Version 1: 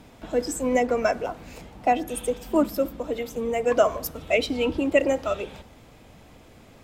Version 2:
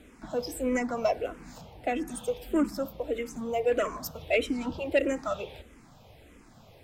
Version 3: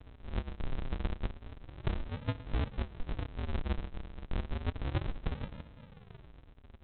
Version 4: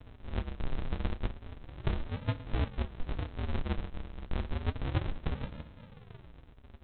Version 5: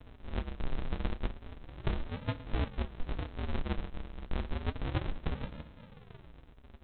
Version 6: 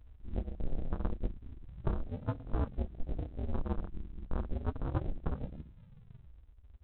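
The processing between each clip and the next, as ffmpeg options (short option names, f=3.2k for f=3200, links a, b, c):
-filter_complex "[0:a]asoftclip=type=tanh:threshold=-14dB,asplit=2[a][b];[b]afreqshift=-1.6[c];[a][c]amix=inputs=2:normalize=1,volume=-1dB"
-af "acompressor=threshold=-33dB:ratio=2.5,aresample=8000,acrusher=samples=41:mix=1:aa=0.000001:lfo=1:lforange=41:lforate=0.31,aresample=44100,volume=1dB"
-af "flanger=delay=7.5:depth=8.6:regen=-56:speed=0.83:shape=triangular,volume=6dB"
-af "equalizer=f=98:t=o:w=0.72:g=-4.5"
-af "afwtdn=0.01"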